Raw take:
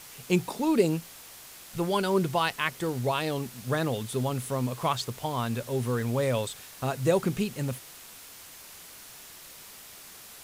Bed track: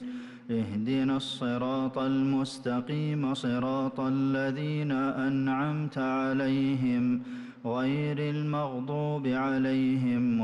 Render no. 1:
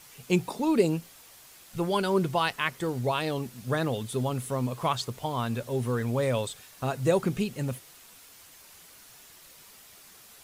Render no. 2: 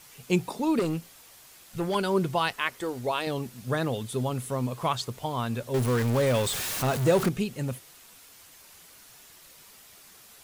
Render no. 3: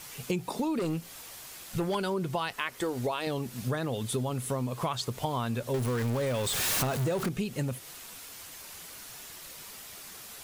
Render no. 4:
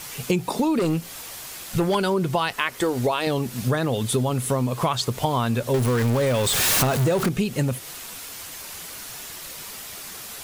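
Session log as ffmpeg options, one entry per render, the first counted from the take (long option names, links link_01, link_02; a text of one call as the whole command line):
ffmpeg -i in.wav -af "afftdn=noise_reduction=6:noise_floor=-48" out.wav
ffmpeg -i in.wav -filter_complex "[0:a]asettb=1/sr,asplit=3[link_01][link_02][link_03];[link_01]atrim=end=0.794[link_04];[link_02]atrim=start=0.79:end=1.95,asetpts=PTS-STARTPTS,afade=type=in:duration=0.004:curve=qsin,afade=type=out:start_time=1.156:duration=0.004:curve=qsin,volume=23.5dB,asoftclip=hard,volume=-23.5dB[link_05];[link_03]atrim=start=1.946[link_06];[link_04][link_05]acrossfade=duration=0.004:curve1=hsin:curve2=qsin[link_07];[link_07][link_06]acrossfade=duration=0.004:curve1=qsin:curve2=hsin,asettb=1/sr,asplit=3[link_08][link_09][link_10];[link_08]atrim=end=2.534[link_11];[link_09]atrim=start=2.53:end=3.27,asetpts=PTS-STARTPTS,afade=type=in:duration=0.004:curve=qsin,afade=type=out:start_time=0.736:duration=0.004:curve=qsin,equalizer=frequency=150:width_type=o:width=0.75:gain=-13[link_12];[link_10]atrim=start=3.266[link_13];[link_11][link_12]acrossfade=duration=0.004:curve1=hsin:curve2=qsin[link_14];[link_14][link_13]acrossfade=duration=0.004:curve1=qsin:curve2=hsin,asettb=1/sr,asplit=3[link_15][link_16][link_17];[link_15]atrim=end=5.744[link_18];[link_16]atrim=start=5.74:end=7.29,asetpts=PTS-STARTPTS,afade=type=in:duration=0.004:curve=qsin,afade=type=out:start_time=1.546:duration=0.004:curve=qsin,aeval=exprs='val(0)+0.5*0.0473*sgn(val(0))':channel_layout=same[link_19];[link_17]atrim=start=7.286[link_20];[link_18][link_19]acrossfade=duration=0.004:curve1=hsin:curve2=qsin[link_21];[link_21][link_20]acrossfade=duration=0.004:curve1=qsin:curve2=hsin" out.wav
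ffmpeg -i in.wav -filter_complex "[0:a]asplit=2[link_01][link_02];[link_02]alimiter=limit=-20dB:level=0:latency=1:release=25,volume=1dB[link_03];[link_01][link_03]amix=inputs=2:normalize=0,acompressor=threshold=-28dB:ratio=6" out.wav
ffmpeg -i in.wav -af "volume=8.5dB" out.wav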